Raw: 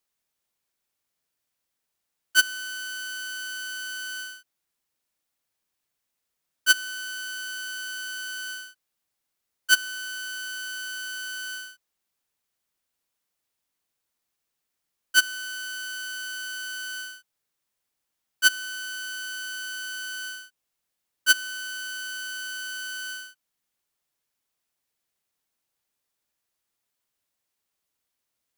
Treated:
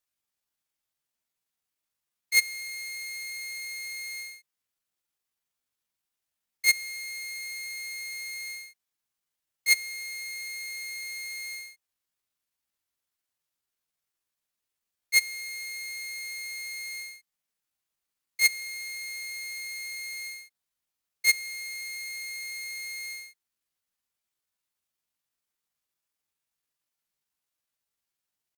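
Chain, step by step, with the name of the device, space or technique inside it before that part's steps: 6.83–7.35 s: high-pass 86 Hz 12 dB/octave; chipmunk voice (pitch shift +6 st); peaking EQ 420 Hz -3 dB 2 oct; trim -2.5 dB

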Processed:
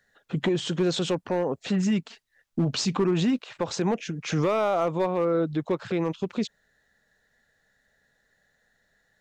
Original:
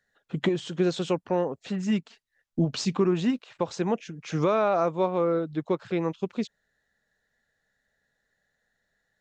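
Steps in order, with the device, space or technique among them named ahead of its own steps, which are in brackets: clipper into limiter (hard clipper -17.5 dBFS, distortion -19 dB; peak limiter -24.5 dBFS, peak gain reduction 7 dB); trim +7 dB

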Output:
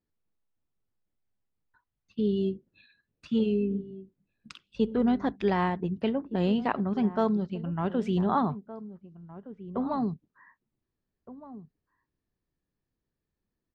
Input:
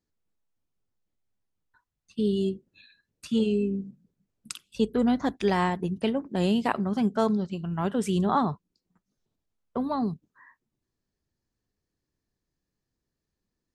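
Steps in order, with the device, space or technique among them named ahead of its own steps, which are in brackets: shout across a valley (distance through air 210 m; echo from a far wall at 260 m, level -15 dB); trim -1 dB

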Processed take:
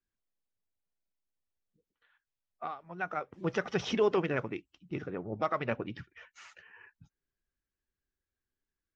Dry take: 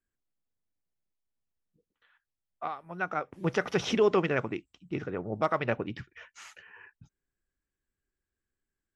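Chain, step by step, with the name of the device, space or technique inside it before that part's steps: clip after many re-uploads (low-pass 6.6 kHz 24 dB/octave; coarse spectral quantiser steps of 15 dB); trim -3 dB

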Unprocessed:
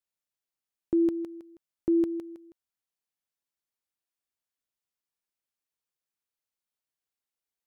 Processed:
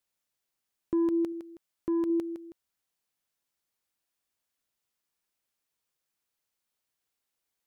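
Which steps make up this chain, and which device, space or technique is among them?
soft clipper into limiter (saturation -20.5 dBFS, distortion -19 dB; peak limiter -29 dBFS, peak gain reduction 7 dB); 1.32–2.10 s: bass shelf 400 Hz -3 dB; trim +6.5 dB

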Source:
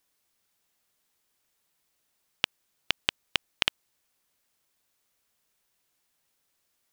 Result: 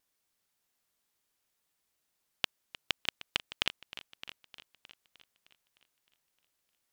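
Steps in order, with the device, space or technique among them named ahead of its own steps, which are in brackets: multi-head tape echo (multi-head delay 307 ms, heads first and second, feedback 44%, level -17 dB; wow and flutter); trim -5 dB

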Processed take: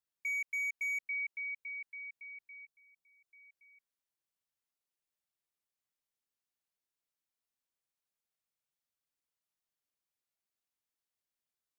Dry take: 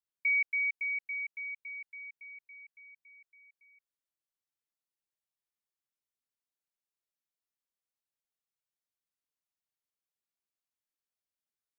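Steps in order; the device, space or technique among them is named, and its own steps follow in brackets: limiter into clipper (peak limiter -30.5 dBFS, peak gain reduction 6.5 dB; hard clipper -32.5 dBFS, distortion -21 dB); 2.65–3.28 s: peaking EQ 2.1 kHz -12 dB

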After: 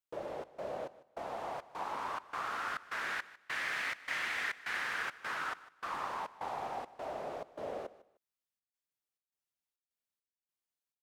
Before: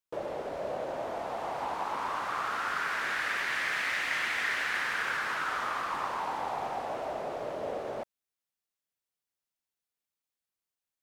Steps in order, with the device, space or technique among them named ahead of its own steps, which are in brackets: trance gate with a delay (trance gate "xxx.xx..xxx.xxx." 103 bpm -60 dB; feedback delay 152 ms, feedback 24%, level -18 dB); trim -5 dB

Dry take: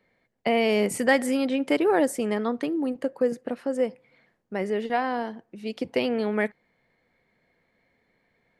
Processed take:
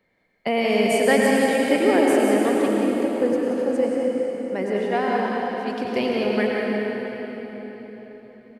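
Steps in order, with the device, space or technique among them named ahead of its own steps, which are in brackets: cave (delay 177 ms -8.5 dB; reverberation RT60 4.4 s, pre-delay 86 ms, DRR -2 dB)

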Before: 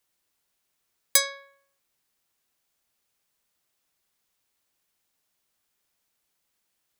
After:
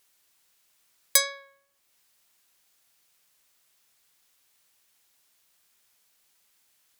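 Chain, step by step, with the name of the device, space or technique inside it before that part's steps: noise-reduction cassette on a plain deck (tape noise reduction on one side only encoder only; wow and flutter 10 cents; white noise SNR 40 dB)

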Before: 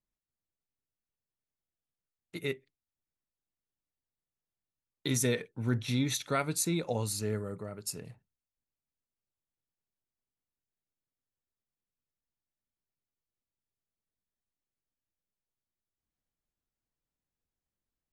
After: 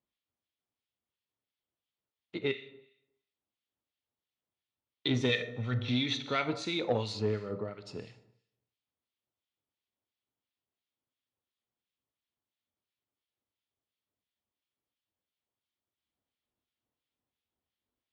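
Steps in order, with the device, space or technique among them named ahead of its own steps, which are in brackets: 5.29–5.80 s: comb 1.6 ms, depth 66%; Schroeder reverb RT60 0.79 s, combs from 25 ms, DRR 11 dB; guitar amplifier with harmonic tremolo (harmonic tremolo 2.9 Hz, depth 70%, crossover 1.5 kHz; saturation -24.5 dBFS, distortion -20 dB; cabinet simulation 92–4400 Hz, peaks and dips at 160 Hz -10 dB, 1.6 kHz -4 dB, 3.3 kHz +6 dB); trim +6.5 dB

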